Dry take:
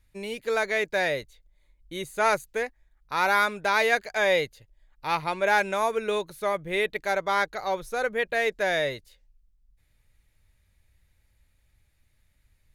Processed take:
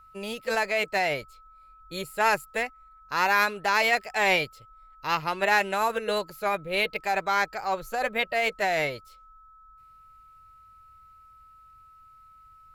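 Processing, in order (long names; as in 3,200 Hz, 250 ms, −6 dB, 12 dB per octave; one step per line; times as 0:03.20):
formants moved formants +2 semitones
steady tone 1,300 Hz −51 dBFS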